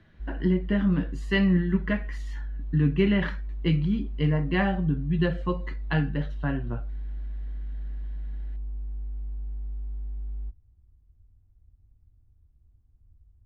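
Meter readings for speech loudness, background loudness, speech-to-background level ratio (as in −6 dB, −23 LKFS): −26.5 LKFS, −37.5 LKFS, 11.0 dB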